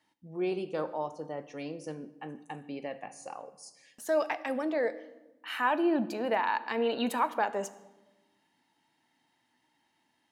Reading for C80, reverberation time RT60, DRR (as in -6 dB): 17.5 dB, 1.1 s, 12.0 dB